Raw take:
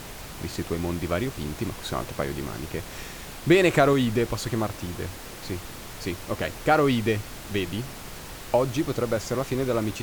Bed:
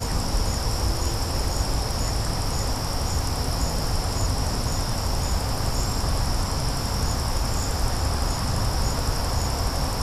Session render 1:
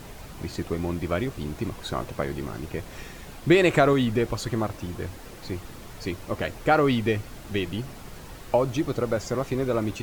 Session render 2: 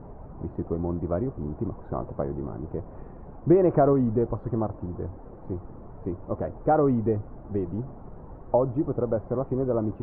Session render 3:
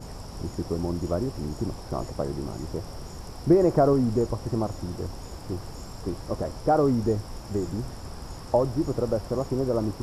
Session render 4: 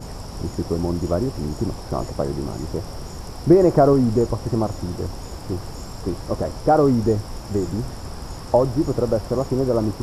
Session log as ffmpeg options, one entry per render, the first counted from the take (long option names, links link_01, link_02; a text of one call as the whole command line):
ffmpeg -i in.wav -af "afftdn=noise_reduction=7:noise_floor=-40" out.wav
ffmpeg -i in.wav -af "lowpass=frequency=1000:width=0.5412,lowpass=frequency=1000:width=1.3066" out.wav
ffmpeg -i in.wav -i bed.wav -filter_complex "[1:a]volume=-16.5dB[link_01];[0:a][link_01]amix=inputs=2:normalize=0" out.wav
ffmpeg -i in.wav -af "volume=5.5dB" out.wav